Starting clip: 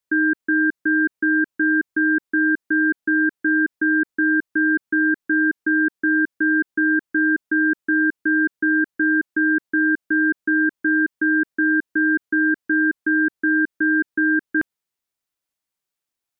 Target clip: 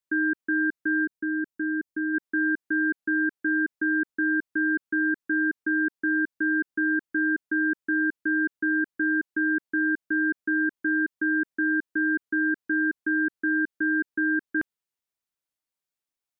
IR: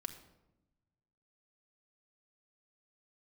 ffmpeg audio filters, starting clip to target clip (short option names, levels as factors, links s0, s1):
-filter_complex "[0:a]asplit=3[s0][s1][s2];[s0]afade=t=out:st=1.04:d=0.02[s3];[s1]equalizer=f=1400:t=o:w=2.7:g=-6.5,afade=t=in:st=1.04:d=0.02,afade=t=out:st=2.13:d=0.02[s4];[s2]afade=t=in:st=2.13:d=0.02[s5];[s3][s4][s5]amix=inputs=3:normalize=0,volume=0.501"